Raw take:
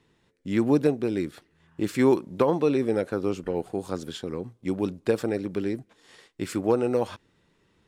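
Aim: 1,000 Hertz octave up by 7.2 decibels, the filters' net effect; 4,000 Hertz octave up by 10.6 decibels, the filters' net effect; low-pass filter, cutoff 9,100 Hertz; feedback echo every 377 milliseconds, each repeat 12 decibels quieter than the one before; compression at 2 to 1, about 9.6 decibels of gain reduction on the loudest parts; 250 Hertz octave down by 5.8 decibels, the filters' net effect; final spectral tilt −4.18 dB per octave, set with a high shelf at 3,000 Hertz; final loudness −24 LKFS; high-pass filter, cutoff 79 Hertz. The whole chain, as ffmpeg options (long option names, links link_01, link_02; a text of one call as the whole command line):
ffmpeg -i in.wav -af "highpass=79,lowpass=9100,equalizer=frequency=250:width_type=o:gain=-8.5,equalizer=frequency=1000:width_type=o:gain=8,highshelf=frequency=3000:gain=7,equalizer=frequency=4000:width_type=o:gain=7.5,acompressor=threshold=-33dB:ratio=2,aecho=1:1:377|754|1131:0.251|0.0628|0.0157,volume=10.5dB" out.wav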